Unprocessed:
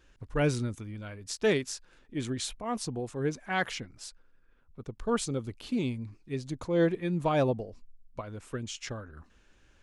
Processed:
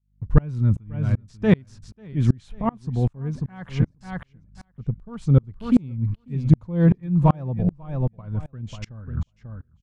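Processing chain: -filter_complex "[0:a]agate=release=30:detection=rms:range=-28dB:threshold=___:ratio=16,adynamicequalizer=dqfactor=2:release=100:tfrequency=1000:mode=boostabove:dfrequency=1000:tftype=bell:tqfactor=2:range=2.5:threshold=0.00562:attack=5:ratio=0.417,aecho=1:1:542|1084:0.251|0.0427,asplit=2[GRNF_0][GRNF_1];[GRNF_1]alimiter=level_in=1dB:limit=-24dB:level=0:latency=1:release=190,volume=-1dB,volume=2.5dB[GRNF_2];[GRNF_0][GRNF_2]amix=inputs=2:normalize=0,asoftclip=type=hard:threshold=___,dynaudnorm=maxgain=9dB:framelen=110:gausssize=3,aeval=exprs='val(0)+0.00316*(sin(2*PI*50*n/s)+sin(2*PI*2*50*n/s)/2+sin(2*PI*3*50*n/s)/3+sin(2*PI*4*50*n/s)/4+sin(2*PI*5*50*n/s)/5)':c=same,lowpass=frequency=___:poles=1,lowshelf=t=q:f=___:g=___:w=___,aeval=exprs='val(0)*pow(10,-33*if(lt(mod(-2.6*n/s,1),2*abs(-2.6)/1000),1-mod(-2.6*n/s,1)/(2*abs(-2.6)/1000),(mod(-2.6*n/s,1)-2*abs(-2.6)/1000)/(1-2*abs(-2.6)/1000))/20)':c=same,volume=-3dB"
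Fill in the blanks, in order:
-52dB, -13.5dB, 1.3k, 240, 11, 1.5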